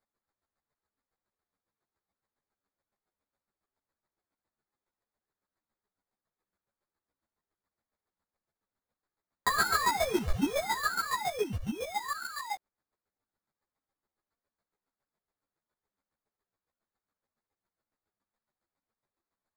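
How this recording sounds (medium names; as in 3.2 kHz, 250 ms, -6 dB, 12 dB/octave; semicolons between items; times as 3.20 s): chopped level 7.2 Hz, depth 65%, duty 25%; aliases and images of a low sample rate 2.9 kHz, jitter 0%; a shimmering, thickened sound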